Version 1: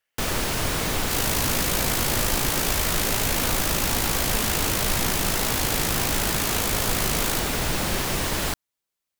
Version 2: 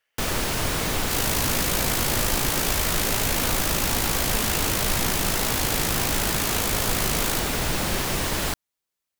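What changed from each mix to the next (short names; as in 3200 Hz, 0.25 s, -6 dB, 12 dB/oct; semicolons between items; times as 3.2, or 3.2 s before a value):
speech +5.0 dB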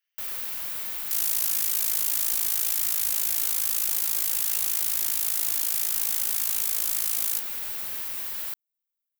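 first sound: add bell 7100 Hz -12.5 dB 2.1 oct; master: add pre-emphasis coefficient 0.97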